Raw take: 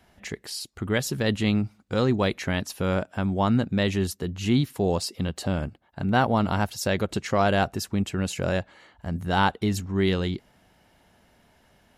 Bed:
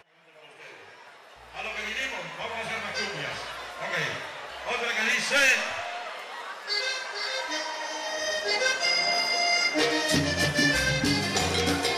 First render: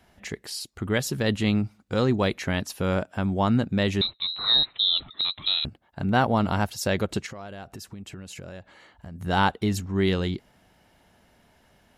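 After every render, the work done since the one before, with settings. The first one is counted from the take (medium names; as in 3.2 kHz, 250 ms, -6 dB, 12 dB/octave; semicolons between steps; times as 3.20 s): 4.01–5.65 s: frequency inversion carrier 4 kHz; 7.26–9.21 s: compression 8:1, threshold -36 dBFS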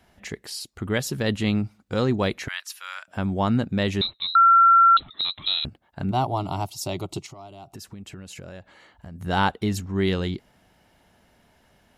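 2.48–3.08 s: high-pass 1.3 kHz 24 dB/octave; 4.35–4.97 s: bleep 1.36 kHz -11 dBFS; 6.11–7.75 s: static phaser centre 330 Hz, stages 8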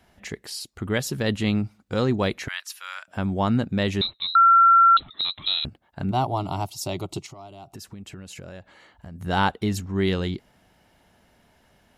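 no audible change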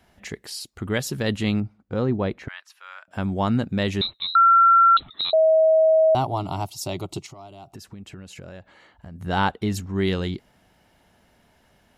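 1.60–3.11 s: low-pass 1 kHz 6 dB/octave; 5.33–6.15 s: bleep 638 Hz -13 dBFS; 7.71–9.70 s: treble shelf 5.6 kHz -5.5 dB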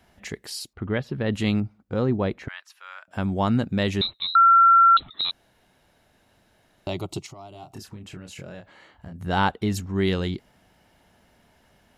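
0.73–1.33 s: distance through air 380 m; 5.31–6.87 s: room tone; 7.51–9.13 s: doubling 28 ms -5 dB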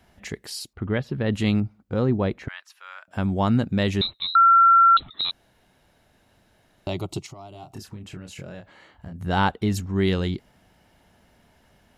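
bass shelf 200 Hz +3 dB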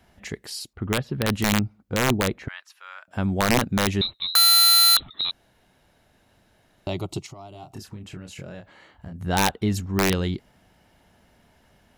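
integer overflow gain 12.5 dB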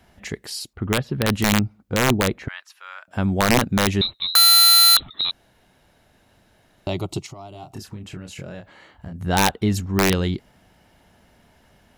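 trim +3 dB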